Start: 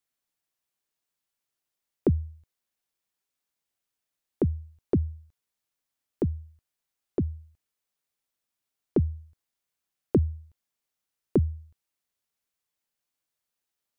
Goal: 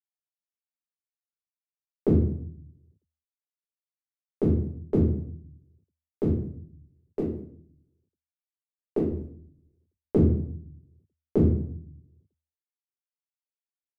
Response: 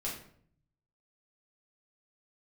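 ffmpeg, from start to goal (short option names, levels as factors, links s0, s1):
-filter_complex "[0:a]asettb=1/sr,asplit=3[s0][s1][s2];[s0]atrim=end=6.314[s3];[s1]atrim=start=6.31:end=9.1,asetpts=PTS-STARTPTS,afade=t=in:d=0.004:c=qsin,afade=t=out:st=2.786:d=0.004:c=qsin,acrossover=split=270|3000[s4][s5][s6];[s4]acompressor=threshold=0.0112:ratio=2.5[s7];[s7][s5][s6]amix=inputs=3:normalize=0[s8];[s2]atrim=start=9.096[s9];[s3][s8]acrossfade=d=0.004:c1=hsin:c2=qsin[s10];[s10][s9]acrossfade=d=0.004:c1=qsin:c2=hsin,aeval=exprs='sgn(val(0))*max(abs(val(0))-0.00398,0)':c=same[s11];[1:a]atrim=start_sample=2205[s12];[s11][s12]afir=irnorm=-1:irlink=0"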